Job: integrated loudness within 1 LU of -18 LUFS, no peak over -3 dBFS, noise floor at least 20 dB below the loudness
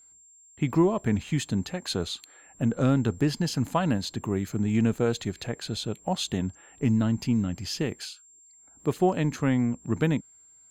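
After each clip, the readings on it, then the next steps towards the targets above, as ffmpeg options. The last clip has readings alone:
steady tone 7400 Hz; tone level -53 dBFS; loudness -27.5 LUFS; peak -11.5 dBFS; loudness target -18.0 LUFS
-> -af "bandreject=f=7.4k:w=30"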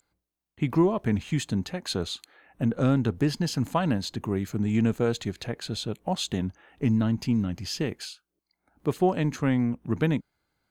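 steady tone none; loudness -27.5 LUFS; peak -11.5 dBFS; loudness target -18.0 LUFS
-> -af "volume=9.5dB,alimiter=limit=-3dB:level=0:latency=1"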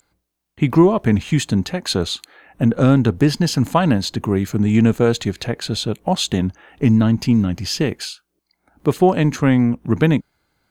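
loudness -18.0 LUFS; peak -3.0 dBFS; noise floor -75 dBFS

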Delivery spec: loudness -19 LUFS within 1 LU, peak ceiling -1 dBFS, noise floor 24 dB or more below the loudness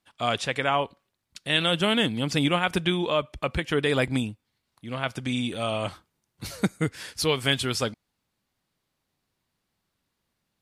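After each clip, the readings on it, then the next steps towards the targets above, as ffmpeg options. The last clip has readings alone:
loudness -26.0 LUFS; peak -8.5 dBFS; loudness target -19.0 LUFS
-> -af "volume=7dB"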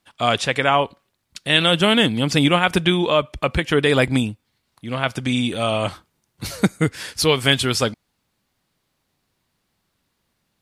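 loudness -19.0 LUFS; peak -1.5 dBFS; noise floor -73 dBFS

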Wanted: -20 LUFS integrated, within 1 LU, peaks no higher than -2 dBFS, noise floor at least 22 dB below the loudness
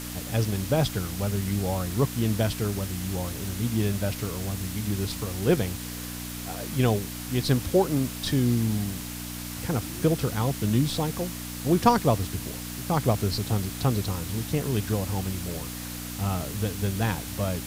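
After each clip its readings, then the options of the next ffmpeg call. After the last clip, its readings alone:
hum 60 Hz; harmonics up to 300 Hz; hum level -36 dBFS; noise floor -36 dBFS; noise floor target -50 dBFS; loudness -27.5 LUFS; peak -6.0 dBFS; loudness target -20.0 LUFS
-> -af "bandreject=f=60:t=h:w=4,bandreject=f=120:t=h:w=4,bandreject=f=180:t=h:w=4,bandreject=f=240:t=h:w=4,bandreject=f=300:t=h:w=4"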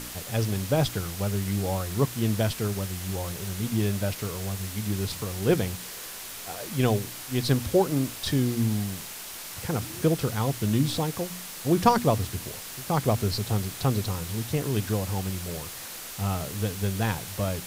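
hum none; noise floor -39 dBFS; noise floor target -50 dBFS
-> -af "afftdn=nr=11:nf=-39"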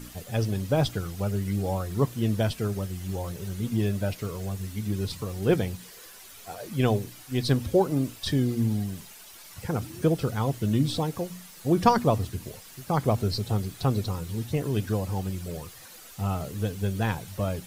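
noise floor -48 dBFS; noise floor target -50 dBFS
-> -af "afftdn=nr=6:nf=-48"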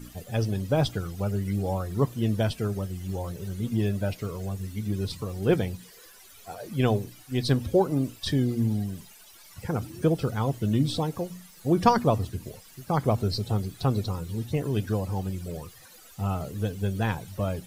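noise floor -51 dBFS; loudness -28.0 LUFS; peak -6.0 dBFS; loudness target -20.0 LUFS
-> -af "volume=8dB,alimiter=limit=-2dB:level=0:latency=1"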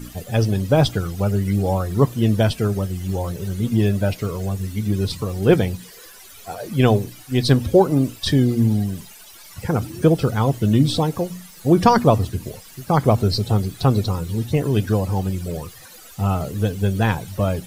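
loudness -20.0 LUFS; peak -2.0 dBFS; noise floor -43 dBFS

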